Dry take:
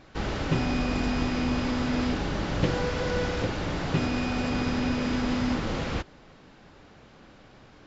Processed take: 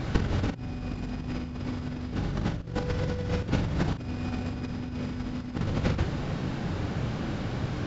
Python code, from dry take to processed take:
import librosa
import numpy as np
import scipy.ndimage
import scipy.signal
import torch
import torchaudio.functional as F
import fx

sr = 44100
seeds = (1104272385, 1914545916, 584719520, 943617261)

y = fx.peak_eq(x, sr, hz=110.0, db=13.0, octaves=2.3)
y = fx.over_compress(y, sr, threshold_db=-29.0, ratio=-0.5)
y = fx.doubler(y, sr, ms=43.0, db=-8.5)
y = y * librosa.db_to_amplitude(2.0)